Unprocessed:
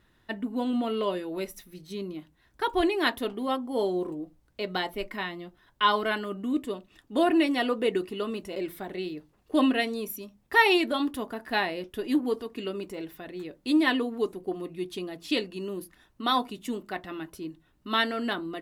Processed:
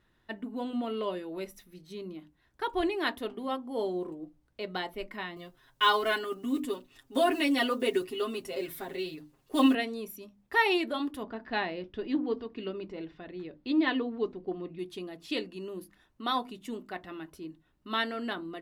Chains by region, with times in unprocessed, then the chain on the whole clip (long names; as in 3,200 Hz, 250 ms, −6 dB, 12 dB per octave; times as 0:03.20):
0:05.36–0:09.75: one scale factor per block 7 bits + high-shelf EQ 4,500 Hz +10 dB + comb filter 7.5 ms, depth 99%
0:11.23–0:14.79: low-pass filter 4,900 Hz 24 dB per octave + low-shelf EQ 230 Hz +5.5 dB
whole clip: high-shelf EQ 5,800 Hz −4.5 dB; mains-hum notches 50/100/150/200/250/300 Hz; level −4.5 dB